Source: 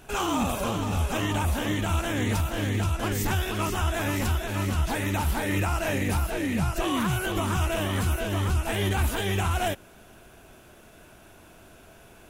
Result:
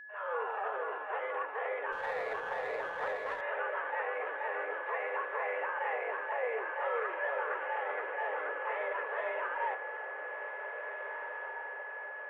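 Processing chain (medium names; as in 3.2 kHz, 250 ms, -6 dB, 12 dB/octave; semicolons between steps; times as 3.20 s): fade-in on the opening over 0.63 s; peak limiter -22 dBFS, peak gain reduction 6.5 dB; flange 0.61 Hz, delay 8.2 ms, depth 6.3 ms, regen +88%; mistuned SSB +210 Hz 250–2000 Hz; whistle 1.7 kHz -49 dBFS; echo that smears into a reverb 1828 ms, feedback 50%, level -7.5 dB; 1.92–3.41 s: sliding maximum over 3 samples; trim +2.5 dB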